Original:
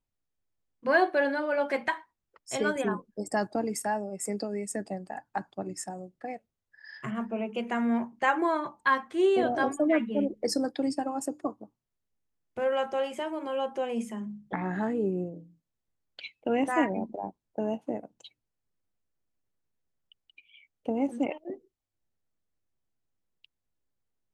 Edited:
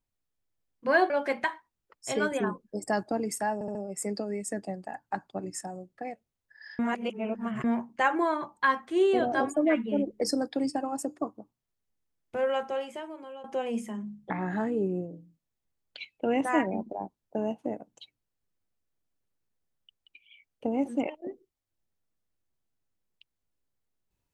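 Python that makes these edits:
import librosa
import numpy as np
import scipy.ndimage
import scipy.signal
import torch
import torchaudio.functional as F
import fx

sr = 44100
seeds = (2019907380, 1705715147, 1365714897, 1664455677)

y = fx.edit(x, sr, fx.cut(start_s=1.1, length_s=0.44),
    fx.stutter(start_s=3.98, slice_s=0.07, count=4),
    fx.reverse_span(start_s=7.02, length_s=0.85),
    fx.fade_out_to(start_s=12.69, length_s=0.98, floor_db=-16.5), tone=tone)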